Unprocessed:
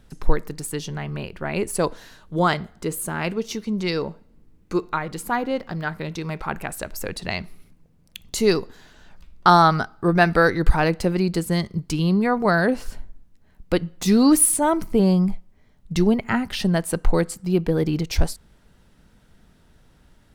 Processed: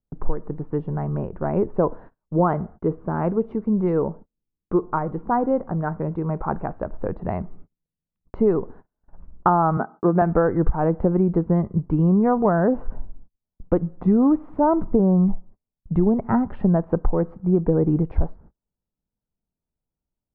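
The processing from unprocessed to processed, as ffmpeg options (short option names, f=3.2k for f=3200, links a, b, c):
-filter_complex "[0:a]asettb=1/sr,asplit=3[a][b][c];[a]atrim=end=9.774[d];[b]atrim=start=9.77:end=10.22,asetpts=PTS-STARTPTS,afade=t=in:d=0.004:c=qsin,afade=t=out:st=0.446:d=0.004:c=qsin,highpass=f=170:w=0.5412,highpass=f=170:w=1.3066[e];[c]atrim=start=10.216[f];[d][e]acrossfade=d=0.004:c1=hsin:c2=qsin[g];[g][f]acrossfade=d=0.004:c1=qsin:c2=hsin,lowpass=f=1.1k:w=0.5412,lowpass=f=1.1k:w=1.3066,agate=range=-36dB:threshold=-43dB:ratio=16:detection=peak,acompressor=threshold=-18dB:ratio=12,volume=4.5dB"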